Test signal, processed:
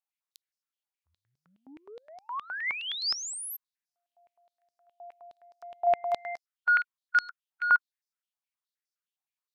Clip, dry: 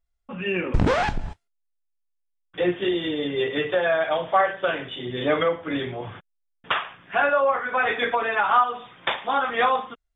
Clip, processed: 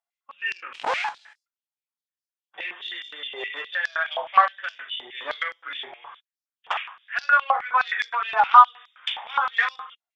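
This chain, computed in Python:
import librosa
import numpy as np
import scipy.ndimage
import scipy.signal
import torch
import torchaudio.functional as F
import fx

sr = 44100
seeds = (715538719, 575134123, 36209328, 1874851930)

y = fx.cheby_harmonics(x, sr, harmonics=(3,), levels_db=(-19,), full_scale_db=-9.5)
y = fx.hpss(y, sr, part='harmonic', gain_db=6)
y = fx.filter_held_highpass(y, sr, hz=9.6, low_hz=800.0, high_hz=5100.0)
y = F.gain(torch.from_numpy(y), -6.0).numpy()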